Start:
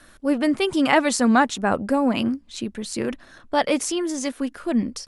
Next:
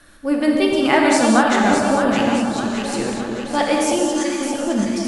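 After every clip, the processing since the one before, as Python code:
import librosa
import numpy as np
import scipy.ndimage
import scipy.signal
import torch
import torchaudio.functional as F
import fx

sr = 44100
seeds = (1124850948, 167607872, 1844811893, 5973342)

y = fx.echo_alternate(x, sr, ms=307, hz=980.0, feedback_pct=71, wet_db=-3.5)
y = fx.rev_gated(y, sr, seeds[0], gate_ms=250, shape='flat', drr_db=-0.5)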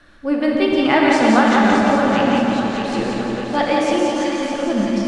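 y = scipy.signal.sosfilt(scipy.signal.butter(2, 4300.0, 'lowpass', fs=sr, output='sos'), x)
y = fx.echo_feedback(y, sr, ms=174, feedback_pct=55, wet_db=-5.0)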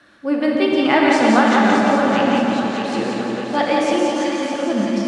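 y = scipy.signal.sosfilt(scipy.signal.butter(2, 150.0, 'highpass', fs=sr, output='sos'), x)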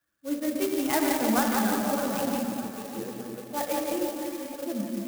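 y = fx.bin_expand(x, sr, power=1.5)
y = fx.clock_jitter(y, sr, seeds[1], jitter_ms=0.079)
y = y * 10.0 ** (-8.5 / 20.0)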